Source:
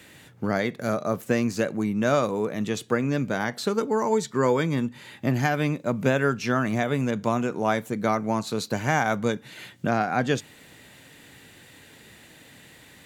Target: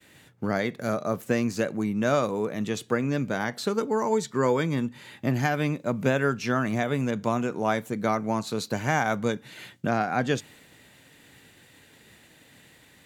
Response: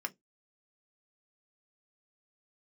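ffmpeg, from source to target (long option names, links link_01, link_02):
-af "agate=range=-33dB:threshold=-46dB:ratio=3:detection=peak,volume=-1.5dB"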